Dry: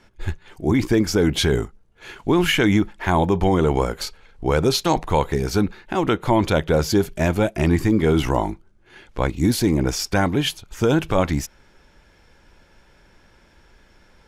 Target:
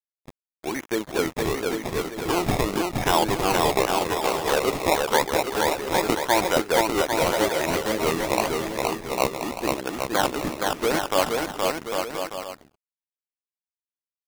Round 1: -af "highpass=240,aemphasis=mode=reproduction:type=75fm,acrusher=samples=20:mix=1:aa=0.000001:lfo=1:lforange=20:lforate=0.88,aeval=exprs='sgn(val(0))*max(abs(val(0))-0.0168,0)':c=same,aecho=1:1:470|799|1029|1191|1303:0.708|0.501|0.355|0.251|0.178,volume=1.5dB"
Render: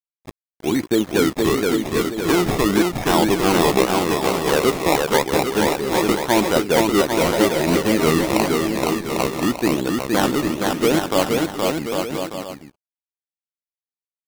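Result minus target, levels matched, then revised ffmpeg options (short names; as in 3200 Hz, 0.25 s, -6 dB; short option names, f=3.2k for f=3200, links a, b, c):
250 Hz band +4.5 dB
-af "highpass=550,aemphasis=mode=reproduction:type=75fm,acrusher=samples=20:mix=1:aa=0.000001:lfo=1:lforange=20:lforate=0.88,aeval=exprs='sgn(val(0))*max(abs(val(0))-0.0168,0)':c=same,aecho=1:1:470|799|1029|1191|1303:0.708|0.501|0.355|0.251|0.178,volume=1.5dB"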